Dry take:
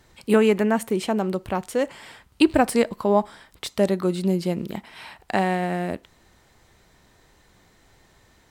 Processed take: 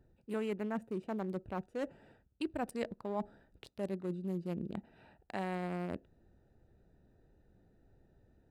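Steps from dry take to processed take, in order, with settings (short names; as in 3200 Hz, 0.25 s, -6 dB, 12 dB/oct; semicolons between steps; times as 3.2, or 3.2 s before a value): Wiener smoothing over 41 samples; reverse; compressor 4:1, threshold -30 dBFS, peak gain reduction 15.5 dB; reverse; gain -6 dB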